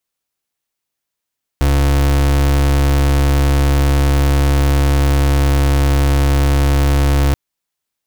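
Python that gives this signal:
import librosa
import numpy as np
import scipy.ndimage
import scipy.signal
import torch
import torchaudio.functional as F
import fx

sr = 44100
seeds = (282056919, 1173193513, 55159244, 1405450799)

y = fx.pulse(sr, length_s=5.73, hz=70.1, level_db=-12.5, duty_pct=35)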